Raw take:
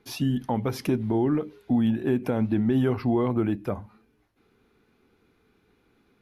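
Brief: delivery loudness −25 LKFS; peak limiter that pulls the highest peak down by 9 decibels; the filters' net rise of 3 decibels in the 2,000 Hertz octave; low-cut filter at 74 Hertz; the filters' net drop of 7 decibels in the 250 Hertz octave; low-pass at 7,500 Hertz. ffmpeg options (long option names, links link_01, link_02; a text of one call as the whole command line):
ffmpeg -i in.wav -af "highpass=74,lowpass=7500,equalizer=frequency=250:width_type=o:gain=-8.5,equalizer=frequency=2000:width_type=o:gain=4,volume=9.5dB,alimiter=limit=-14dB:level=0:latency=1" out.wav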